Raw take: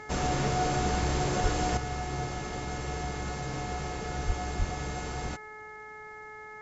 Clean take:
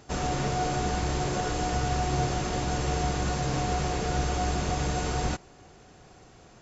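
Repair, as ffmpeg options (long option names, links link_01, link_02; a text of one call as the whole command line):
ffmpeg -i in.wav -filter_complex "[0:a]bandreject=frequency=428.5:width_type=h:width=4,bandreject=frequency=857:width_type=h:width=4,bandreject=frequency=1285.5:width_type=h:width=4,bandreject=frequency=1714:width_type=h:width=4,bandreject=frequency=2142.5:width_type=h:width=4,asplit=3[link_01][link_02][link_03];[link_01]afade=type=out:start_time=1.42:duration=0.02[link_04];[link_02]highpass=frequency=140:width=0.5412,highpass=frequency=140:width=1.3066,afade=type=in:start_time=1.42:duration=0.02,afade=type=out:start_time=1.54:duration=0.02[link_05];[link_03]afade=type=in:start_time=1.54:duration=0.02[link_06];[link_04][link_05][link_06]amix=inputs=3:normalize=0,asplit=3[link_07][link_08][link_09];[link_07]afade=type=out:start_time=4.26:duration=0.02[link_10];[link_08]highpass=frequency=140:width=0.5412,highpass=frequency=140:width=1.3066,afade=type=in:start_time=4.26:duration=0.02,afade=type=out:start_time=4.38:duration=0.02[link_11];[link_09]afade=type=in:start_time=4.38:duration=0.02[link_12];[link_10][link_11][link_12]amix=inputs=3:normalize=0,asplit=3[link_13][link_14][link_15];[link_13]afade=type=out:start_time=4.58:duration=0.02[link_16];[link_14]highpass=frequency=140:width=0.5412,highpass=frequency=140:width=1.3066,afade=type=in:start_time=4.58:duration=0.02,afade=type=out:start_time=4.7:duration=0.02[link_17];[link_15]afade=type=in:start_time=4.7:duration=0.02[link_18];[link_16][link_17][link_18]amix=inputs=3:normalize=0,asetnsamples=nb_out_samples=441:pad=0,asendcmd='1.77 volume volume 7dB',volume=0dB" out.wav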